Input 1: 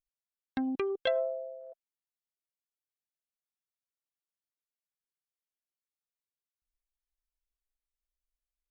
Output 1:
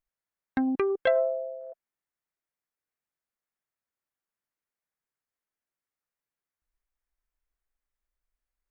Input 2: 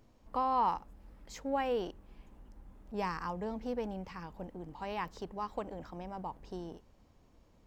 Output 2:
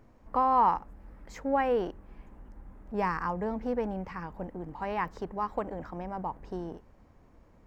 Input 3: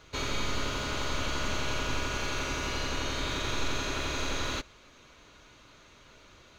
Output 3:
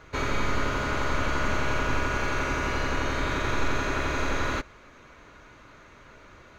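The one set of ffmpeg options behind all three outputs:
ffmpeg -i in.wav -af "highshelf=frequency=2500:width_type=q:width=1.5:gain=-7.5,volume=5.5dB" out.wav

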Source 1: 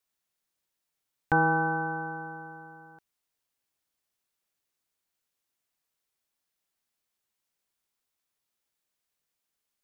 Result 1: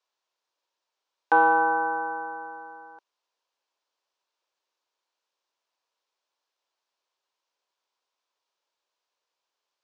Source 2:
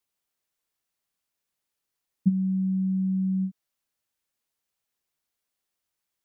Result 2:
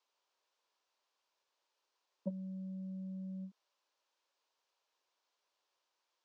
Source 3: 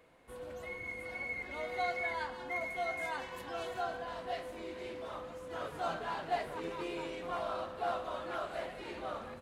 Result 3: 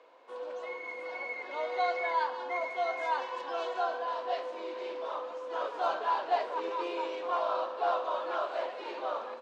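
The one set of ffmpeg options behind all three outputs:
ffmpeg -i in.wav -af "acontrast=81,highpass=frequency=350:width=0.5412,highpass=frequency=350:width=1.3066,equalizer=frequency=550:width_type=q:width=4:gain=4,equalizer=frequency=980:width_type=q:width=4:gain=8,equalizer=frequency=2000:width_type=q:width=4:gain=-5,lowpass=frequency=5900:width=0.5412,lowpass=frequency=5900:width=1.3066,volume=-3.5dB" out.wav

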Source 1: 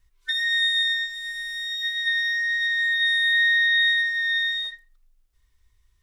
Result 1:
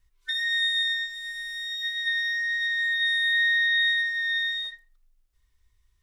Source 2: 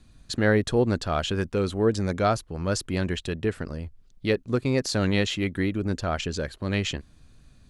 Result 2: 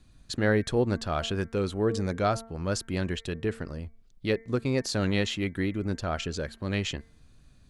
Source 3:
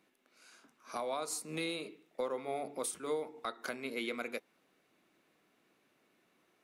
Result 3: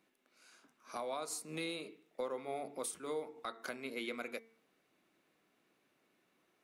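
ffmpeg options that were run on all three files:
ffmpeg -i in.wav -af "bandreject=frequency=226.2:width_type=h:width=4,bandreject=frequency=452.4:width_type=h:width=4,bandreject=frequency=678.6:width_type=h:width=4,bandreject=frequency=904.8:width_type=h:width=4,bandreject=frequency=1131:width_type=h:width=4,bandreject=frequency=1357.2:width_type=h:width=4,bandreject=frequency=1583.4:width_type=h:width=4,bandreject=frequency=1809.6:width_type=h:width=4,bandreject=frequency=2035.8:width_type=h:width=4,bandreject=frequency=2262:width_type=h:width=4,volume=-3dB" out.wav

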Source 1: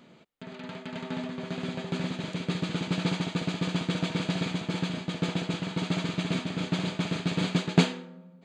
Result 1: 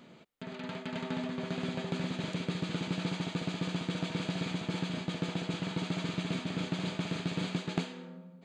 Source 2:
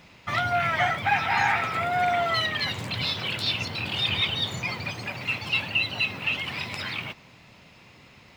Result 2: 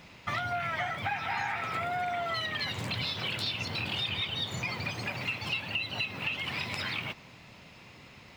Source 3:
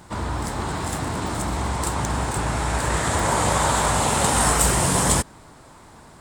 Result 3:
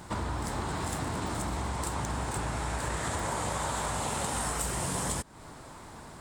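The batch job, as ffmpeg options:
ffmpeg -i in.wav -af "acompressor=threshold=-30dB:ratio=6" out.wav

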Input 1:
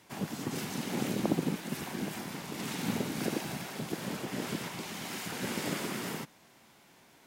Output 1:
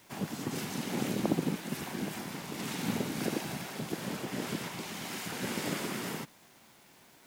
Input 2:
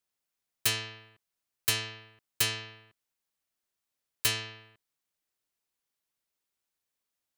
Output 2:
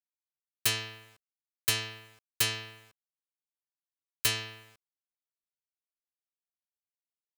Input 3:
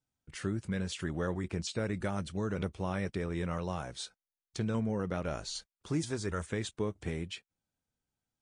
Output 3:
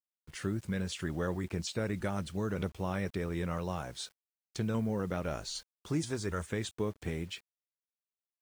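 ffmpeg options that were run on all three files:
ffmpeg -i in.wav -af "acrusher=bits=9:mix=0:aa=0.000001" out.wav

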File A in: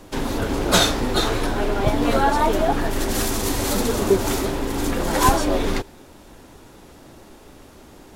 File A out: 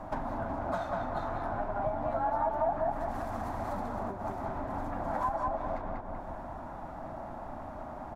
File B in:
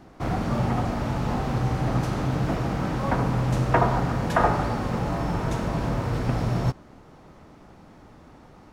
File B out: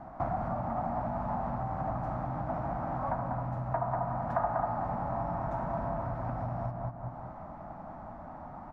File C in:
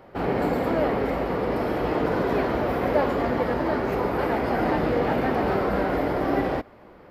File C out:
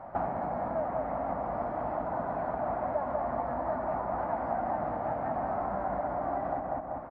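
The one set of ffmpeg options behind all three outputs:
ffmpeg -i in.wav -filter_complex "[0:a]asplit=2[link_01][link_02];[link_02]adelay=192,lowpass=frequency=2200:poles=1,volume=-3dB,asplit=2[link_03][link_04];[link_04]adelay=192,lowpass=frequency=2200:poles=1,volume=0.3,asplit=2[link_05][link_06];[link_06]adelay=192,lowpass=frequency=2200:poles=1,volume=0.3,asplit=2[link_07][link_08];[link_08]adelay=192,lowpass=frequency=2200:poles=1,volume=0.3[link_09];[link_01][link_03][link_05][link_07][link_09]amix=inputs=5:normalize=0,acompressor=threshold=-33dB:ratio=12,firequalizer=gain_entry='entry(240,0);entry(440,-12);entry(640,11);entry(2900,-16);entry(8400,-21)':delay=0.05:min_phase=1" out.wav

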